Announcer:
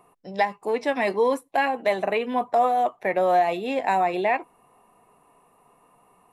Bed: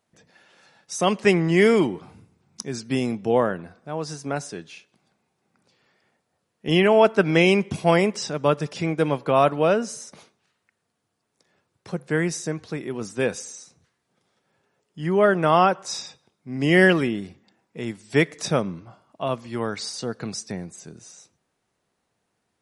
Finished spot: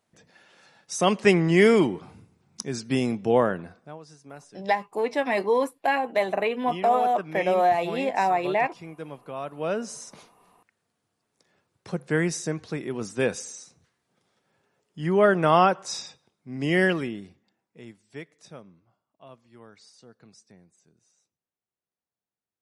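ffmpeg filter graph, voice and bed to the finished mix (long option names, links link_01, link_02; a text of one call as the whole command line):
ffmpeg -i stem1.wav -i stem2.wav -filter_complex "[0:a]adelay=4300,volume=-1dB[link_01];[1:a]volume=15dB,afade=type=out:start_time=3.71:duration=0.28:silence=0.158489,afade=type=in:start_time=9.5:duration=0.61:silence=0.16788,afade=type=out:start_time=15.57:duration=2.67:silence=0.0891251[link_02];[link_01][link_02]amix=inputs=2:normalize=0" out.wav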